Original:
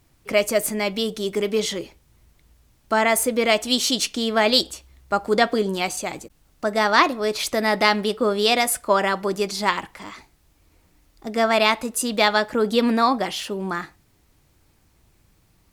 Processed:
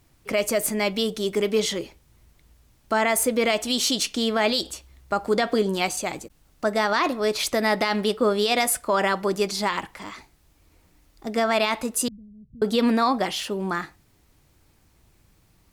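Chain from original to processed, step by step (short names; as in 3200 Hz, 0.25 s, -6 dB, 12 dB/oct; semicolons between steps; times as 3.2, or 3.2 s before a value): 12.08–12.62 inverse Chebyshev low-pass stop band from 860 Hz, stop band 80 dB; limiter -11.5 dBFS, peak gain reduction 9.5 dB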